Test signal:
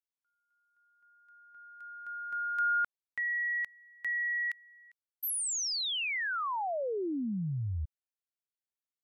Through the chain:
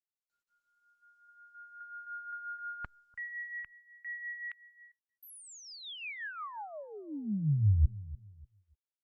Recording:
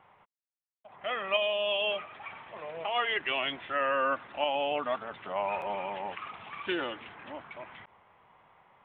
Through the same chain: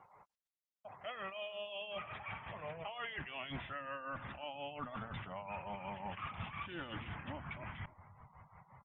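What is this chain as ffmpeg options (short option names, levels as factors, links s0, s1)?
-filter_complex "[0:a]areverse,acompressor=threshold=0.01:ratio=16:attack=2.8:release=82:knee=6:detection=peak,areverse,tremolo=f=5.6:d=0.55,asplit=2[s0][s1];[s1]adelay=294,lowpass=f=1000:p=1,volume=0.126,asplit=2[s2][s3];[s3]adelay=294,lowpass=f=1000:p=1,volume=0.31,asplit=2[s4][s5];[s5]adelay=294,lowpass=f=1000:p=1,volume=0.31[s6];[s2][s4][s6]amix=inputs=3:normalize=0[s7];[s0][s7]amix=inputs=2:normalize=0,acrossover=split=3100[s8][s9];[s9]acompressor=threshold=0.00158:ratio=4:attack=1:release=60[s10];[s8][s10]amix=inputs=2:normalize=0,afftdn=nr=26:nf=-64,asubboost=boost=12:cutoff=120,volume=1.5" -ar 48000 -c:a libopus -b:a 32k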